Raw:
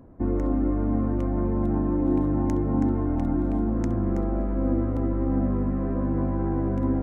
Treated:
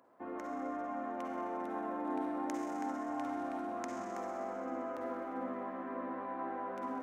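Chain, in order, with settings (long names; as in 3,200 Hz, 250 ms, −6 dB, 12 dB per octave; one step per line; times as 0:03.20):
high-pass filter 820 Hz 12 dB per octave
convolution reverb RT60 2.7 s, pre-delay 44 ms, DRR 0 dB
level −2.5 dB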